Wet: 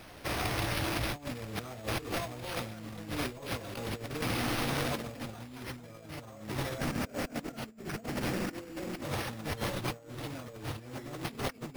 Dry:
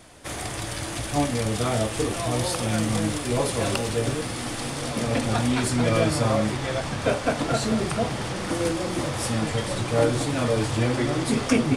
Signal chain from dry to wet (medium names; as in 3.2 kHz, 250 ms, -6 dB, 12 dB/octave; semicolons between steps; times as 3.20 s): 6.78–9.03 s: fifteen-band graphic EQ 100 Hz -6 dB, 250 Hz +8 dB, 1 kHz -6 dB, 4 kHz -7 dB, 10 kHz +7 dB; compressor with a negative ratio -30 dBFS, ratio -0.5; careless resampling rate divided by 6×, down none, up hold; trim -6.5 dB